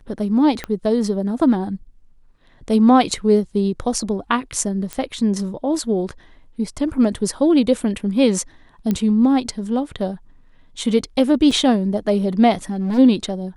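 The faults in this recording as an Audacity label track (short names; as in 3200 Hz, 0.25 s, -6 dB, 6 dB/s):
0.640000	0.640000	pop -12 dBFS
4.930000	4.930000	pop -12 dBFS
8.910000	8.910000	pop -9 dBFS
11.510000	11.510000	gap 3.4 ms
12.700000	12.990000	clipped -18.5 dBFS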